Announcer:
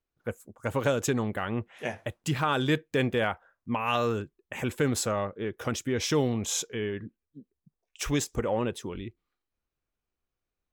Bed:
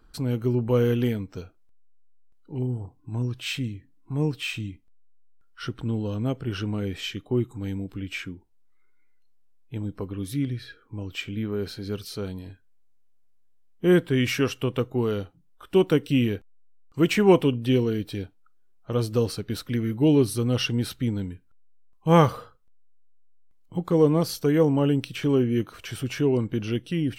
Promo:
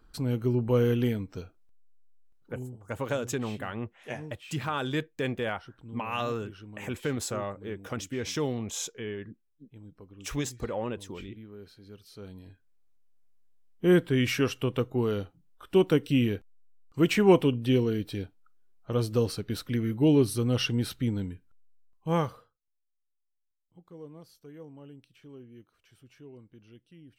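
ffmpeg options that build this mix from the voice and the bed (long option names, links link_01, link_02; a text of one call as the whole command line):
ffmpeg -i stem1.wav -i stem2.wav -filter_complex "[0:a]adelay=2250,volume=-4.5dB[link_01];[1:a]volume=12.5dB,afade=type=out:start_time=2.2:duration=0.56:silence=0.177828,afade=type=in:start_time=12.01:duration=1.26:silence=0.177828,afade=type=out:start_time=21.55:duration=1:silence=0.0630957[link_02];[link_01][link_02]amix=inputs=2:normalize=0" out.wav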